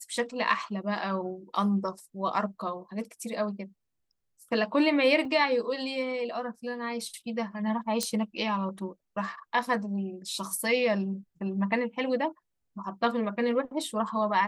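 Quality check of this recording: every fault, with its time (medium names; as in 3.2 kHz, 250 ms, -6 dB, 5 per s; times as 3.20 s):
5.25 s: dropout 2.2 ms
8.03 s: pop -13 dBFS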